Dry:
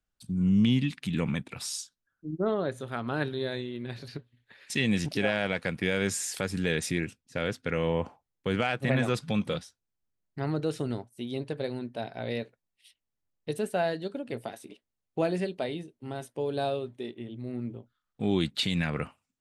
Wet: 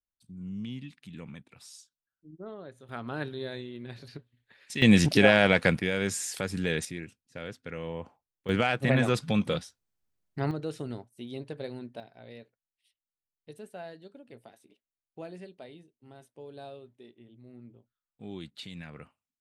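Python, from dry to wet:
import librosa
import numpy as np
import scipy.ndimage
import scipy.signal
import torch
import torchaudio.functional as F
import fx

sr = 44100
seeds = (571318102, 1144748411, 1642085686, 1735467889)

y = fx.gain(x, sr, db=fx.steps((0.0, -14.5), (2.89, -4.5), (4.82, 8.0), (5.79, -1.0), (6.85, -9.0), (8.49, 2.0), (10.51, -5.0), (12.0, -14.5)))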